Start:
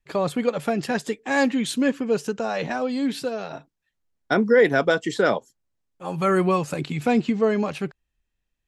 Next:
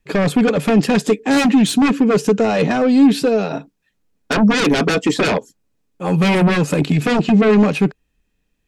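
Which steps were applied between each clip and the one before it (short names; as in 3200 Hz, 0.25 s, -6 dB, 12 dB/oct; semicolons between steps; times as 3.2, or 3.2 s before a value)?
sine folder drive 14 dB, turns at -6.5 dBFS; small resonant body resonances 200/280/430/2500 Hz, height 9 dB, ringing for 45 ms; gain -9 dB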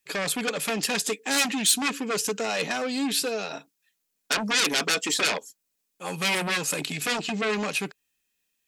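tilt +4.5 dB/oct; gain -9 dB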